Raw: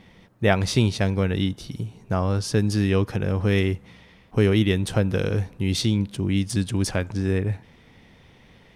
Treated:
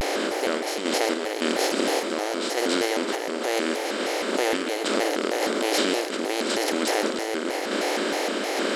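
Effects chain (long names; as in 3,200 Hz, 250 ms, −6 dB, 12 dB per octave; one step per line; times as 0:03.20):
compressor on every frequency bin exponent 0.2
brickwall limiter −7 dBFS, peak gain reduction 9 dB
sample-and-hold tremolo
linear-phase brick-wall high-pass 240 Hz
convolution reverb RT60 0.55 s, pre-delay 88 ms, DRR 10 dB
pitch modulation by a square or saw wave square 3.2 Hz, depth 250 cents
level −3 dB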